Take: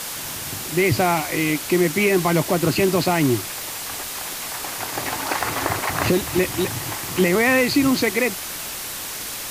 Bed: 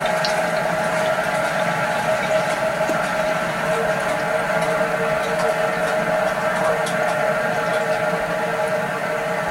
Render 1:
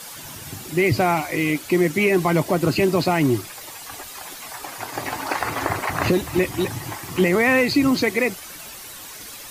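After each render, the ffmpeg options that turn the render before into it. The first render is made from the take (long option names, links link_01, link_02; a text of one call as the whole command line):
ffmpeg -i in.wav -af "afftdn=noise_reduction=10:noise_floor=-31" out.wav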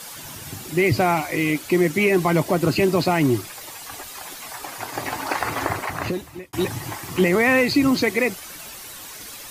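ffmpeg -i in.wav -filter_complex "[0:a]asplit=2[link_01][link_02];[link_01]atrim=end=6.53,asetpts=PTS-STARTPTS,afade=type=out:start_time=5.61:duration=0.92[link_03];[link_02]atrim=start=6.53,asetpts=PTS-STARTPTS,afade=type=in:duration=0.004:curve=hsin[link_04];[link_03][link_04]concat=n=2:v=0:a=1" out.wav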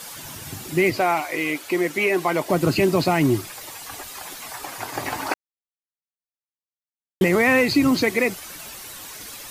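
ffmpeg -i in.wav -filter_complex "[0:a]asettb=1/sr,asplit=3[link_01][link_02][link_03];[link_01]atrim=end=0.904[link_04];[link_02]atrim=start=0.9:end=2.5,asetpts=PTS-STARTPTS,afade=type=in:duration=0.004:curve=qsin,afade=type=out:start_time=1.596:duration=0.004:curve=qsin,bass=frequency=250:gain=-15,treble=frequency=4000:gain=-3[link_05];[link_03]atrim=start=2.496[link_06];[link_04][link_05]acrossfade=duration=0.004:curve1=hsin:curve2=qsin[link_07];[link_07][link_06]acrossfade=duration=0.004:curve1=qsin:curve2=hsin,asplit=3[link_08][link_09][link_10];[link_08]atrim=end=5.34,asetpts=PTS-STARTPTS,afade=type=out:start_time=5.336:duration=0.004:curve=hsin[link_11];[link_09]atrim=start=5.34:end=7.21,asetpts=PTS-STARTPTS,volume=0[link_12];[link_10]atrim=start=7.21,asetpts=PTS-STARTPTS,afade=type=in:duration=0.004:curve=hsin[link_13];[link_11][link_12][link_13]concat=n=3:v=0:a=1" out.wav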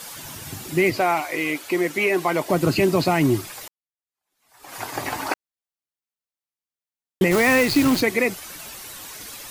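ffmpeg -i in.wav -filter_complex "[0:a]asettb=1/sr,asplit=3[link_01][link_02][link_03];[link_01]atrim=end=7.314[link_04];[link_02]atrim=start=7.31:end=8.01,asetpts=PTS-STARTPTS,afade=type=in:duration=0.004:curve=qsin,afade=type=out:start_time=0.696:duration=0.004:curve=qsin,acrusher=bits=5:dc=4:mix=0:aa=0.000001[link_05];[link_03]atrim=start=8.006[link_06];[link_04][link_05]acrossfade=duration=0.004:curve1=hsin:curve2=qsin[link_07];[link_07][link_06]acrossfade=duration=0.004:curve1=qsin:curve2=hsin,asplit=2[link_08][link_09];[link_08]atrim=end=3.68,asetpts=PTS-STARTPTS,afade=type=out:start_time=3.676:duration=0.004:curve=hsin[link_10];[link_09]atrim=start=3.68,asetpts=PTS-STARTPTS,afade=type=in:duration=1.08:curve=exp[link_11];[link_10][link_11]concat=n=2:v=0:a=1" out.wav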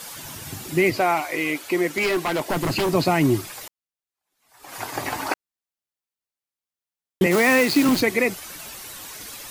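ffmpeg -i in.wav -filter_complex "[0:a]asplit=3[link_01][link_02][link_03];[link_01]afade=type=out:start_time=1.87:duration=0.02[link_04];[link_02]aeval=exprs='0.15*(abs(mod(val(0)/0.15+3,4)-2)-1)':channel_layout=same,afade=type=in:start_time=1.87:duration=0.02,afade=type=out:start_time=2.93:duration=0.02[link_05];[link_03]afade=type=in:start_time=2.93:duration=0.02[link_06];[link_04][link_05][link_06]amix=inputs=3:normalize=0,asettb=1/sr,asplit=3[link_07][link_08][link_09];[link_07]atrim=end=7.264[link_10];[link_08]atrim=start=7.26:end=7.89,asetpts=PTS-STARTPTS,afade=type=in:duration=0.004:curve=qsin,afade=type=out:start_time=0.626:duration=0.004:curve=qsin,highpass=frequency=160:width=0.5412,highpass=frequency=160:width=1.3066[link_11];[link_09]atrim=start=7.886[link_12];[link_10][link_11]acrossfade=duration=0.004:curve1=hsin:curve2=qsin[link_13];[link_13][link_12]acrossfade=duration=0.004:curve1=qsin:curve2=hsin" out.wav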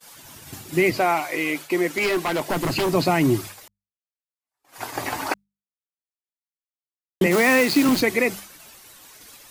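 ffmpeg -i in.wav -af "agate=range=-33dB:threshold=-30dB:ratio=3:detection=peak,bandreject=frequency=50:width_type=h:width=6,bandreject=frequency=100:width_type=h:width=6,bandreject=frequency=150:width_type=h:width=6,bandreject=frequency=200:width_type=h:width=6" out.wav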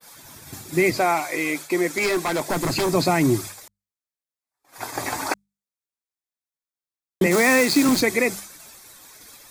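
ffmpeg -i in.wav -af "bandreject=frequency=2900:width=6,adynamicequalizer=threshold=0.00631:dfrequency=7600:dqfactor=1.1:tfrequency=7600:tqfactor=1.1:attack=5:release=100:ratio=0.375:range=3:mode=boostabove:tftype=bell" out.wav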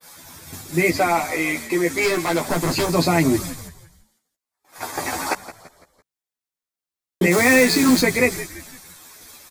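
ffmpeg -i in.wav -filter_complex "[0:a]asplit=2[link_01][link_02];[link_02]adelay=12,volume=-2.5dB[link_03];[link_01][link_03]amix=inputs=2:normalize=0,asplit=5[link_04][link_05][link_06][link_07][link_08];[link_05]adelay=168,afreqshift=-81,volume=-15dB[link_09];[link_06]adelay=336,afreqshift=-162,volume=-22.1dB[link_10];[link_07]adelay=504,afreqshift=-243,volume=-29.3dB[link_11];[link_08]adelay=672,afreqshift=-324,volume=-36.4dB[link_12];[link_04][link_09][link_10][link_11][link_12]amix=inputs=5:normalize=0" out.wav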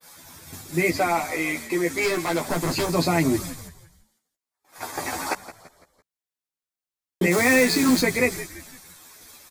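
ffmpeg -i in.wav -af "volume=-3.5dB" out.wav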